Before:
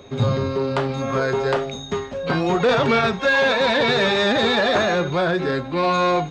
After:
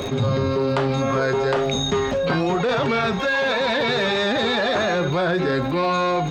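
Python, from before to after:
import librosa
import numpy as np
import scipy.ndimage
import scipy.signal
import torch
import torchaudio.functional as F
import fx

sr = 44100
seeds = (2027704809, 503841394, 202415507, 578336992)

y = fx.rider(x, sr, range_db=10, speed_s=0.5)
y = fx.dmg_crackle(y, sr, seeds[0], per_s=47.0, level_db=-40.0)
y = fx.env_flatten(y, sr, amount_pct=70)
y = F.gain(torch.from_numpy(y), -5.5).numpy()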